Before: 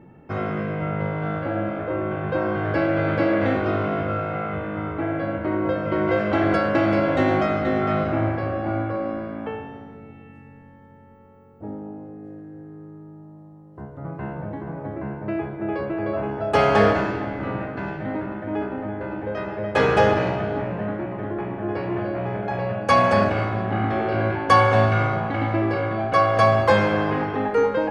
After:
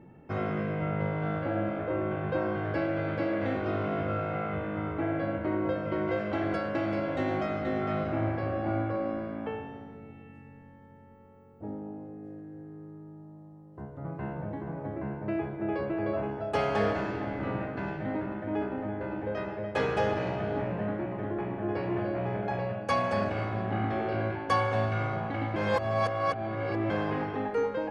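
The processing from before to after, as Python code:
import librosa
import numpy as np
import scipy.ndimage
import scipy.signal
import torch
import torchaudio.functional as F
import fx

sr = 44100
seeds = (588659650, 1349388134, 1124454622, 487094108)

y = fx.edit(x, sr, fx.reverse_span(start_s=25.56, length_s=1.34), tone=tone)
y = fx.rider(y, sr, range_db=3, speed_s=0.5)
y = fx.peak_eq(y, sr, hz=1300.0, db=-2.0, octaves=0.77)
y = F.gain(torch.from_numpy(y), -7.5).numpy()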